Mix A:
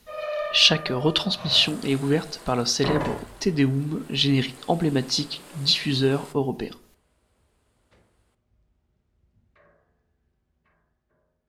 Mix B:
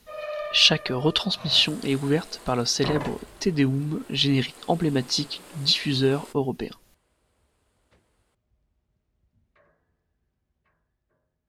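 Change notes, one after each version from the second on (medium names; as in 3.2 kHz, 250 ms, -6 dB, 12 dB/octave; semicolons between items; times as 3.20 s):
reverb: off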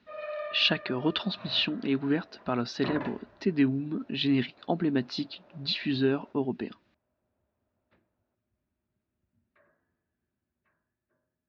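second sound: add band-pass filter 640 Hz, Q 2.3; master: add cabinet simulation 140–3300 Hz, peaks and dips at 150 Hz -9 dB, 470 Hz -10 dB, 770 Hz -7 dB, 1.1 kHz -5 dB, 2.1 kHz -5 dB, 3.1 kHz -7 dB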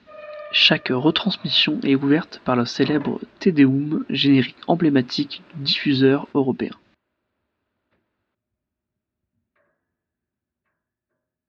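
speech +10.0 dB; second sound: remove band-pass filter 640 Hz, Q 2.3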